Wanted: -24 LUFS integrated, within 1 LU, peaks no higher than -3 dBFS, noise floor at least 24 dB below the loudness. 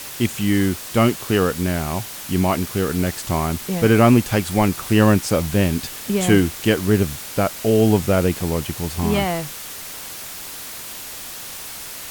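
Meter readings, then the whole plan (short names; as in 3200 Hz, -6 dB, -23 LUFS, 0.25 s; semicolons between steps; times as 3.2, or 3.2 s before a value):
noise floor -34 dBFS; noise floor target -44 dBFS; loudness -19.5 LUFS; peak -2.0 dBFS; loudness target -24.0 LUFS
-> noise print and reduce 10 dB; gain -4.5 dB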